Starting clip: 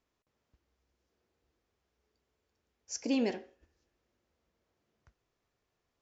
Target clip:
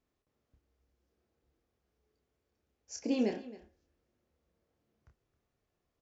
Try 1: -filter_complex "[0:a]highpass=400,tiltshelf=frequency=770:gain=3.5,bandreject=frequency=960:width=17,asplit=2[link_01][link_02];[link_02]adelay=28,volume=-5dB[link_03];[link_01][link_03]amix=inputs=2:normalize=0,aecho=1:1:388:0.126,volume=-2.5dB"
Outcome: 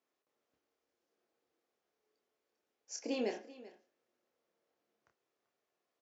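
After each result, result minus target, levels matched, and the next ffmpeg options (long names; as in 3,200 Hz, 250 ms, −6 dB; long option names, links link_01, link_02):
echo 120 ms late; 500 Hz band +3.5 dB
-filter_complex "[0:a]highpass=400,tiltshelf=frequency=770:gain=3.5,bandreject=frequency=960:width=17,asplit=2[link_01][link_02];[link_02]adelay=28,volume=-5dB[link_03];[link_01][link_03]amix=inputs=2:normalize=0,aecho=1:1:268:0.126,volume=-2.5dB"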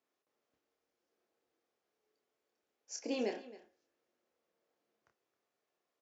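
500 Hz band +3.5 dB
-filter_complex "[0:a]tiltshelf=frequency=770:gain=3.5,bandreject=frequency=960:width=17,asplit=2[link_01][link_02];[link_02]adelay=28,volume=-5dB[link_03];[link_01][link_03]amix=inputs=2:normalize=0,aecho=1:1:268:0.126,volume=-2.5dB"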